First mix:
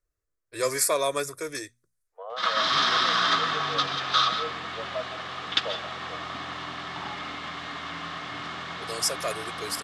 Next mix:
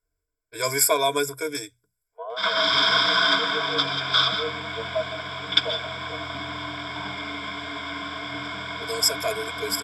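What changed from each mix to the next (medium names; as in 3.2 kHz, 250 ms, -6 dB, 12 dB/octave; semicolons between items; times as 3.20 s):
master: add rippled EQ curve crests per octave 1.7, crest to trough 17 dB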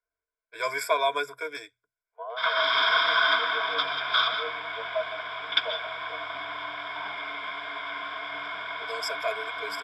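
master: add three-band isolator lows -20 dB, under 520 Hz, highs -21 dB, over 3.5 kHz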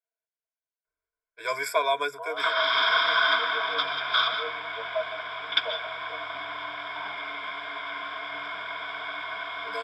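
first voice: entry +0.85 s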